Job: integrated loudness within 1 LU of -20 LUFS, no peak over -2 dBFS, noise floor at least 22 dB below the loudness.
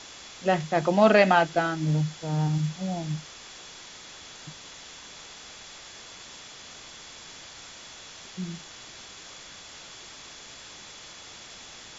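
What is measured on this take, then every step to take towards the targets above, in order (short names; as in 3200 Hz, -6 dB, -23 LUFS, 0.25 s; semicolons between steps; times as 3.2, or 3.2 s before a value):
steady tone 3400 Hz; tone level -52 dBFS; noise floor -46 dBFS; noise floor target -47 dBFS; loudness -25.0 LUFS; peak -6.0 dBFS; loudness target -20.0 LUFS
-> notch 3400 Hz, Q 30; noise print and reduce 6 dB; gain +5 dB; limiter -2 dBFS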